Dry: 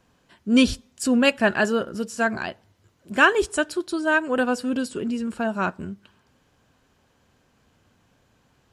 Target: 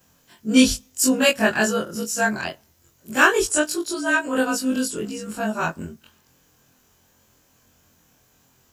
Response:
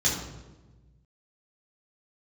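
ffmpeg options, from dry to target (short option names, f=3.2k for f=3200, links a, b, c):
-af "afftfilt=real='re':imag='-im':win_size=2048:overlap=0.75,aexciter=amount=2:drive=1.2:freq=5.6k,aemphasis=mode=production:type=50kf,volume=4.5dB"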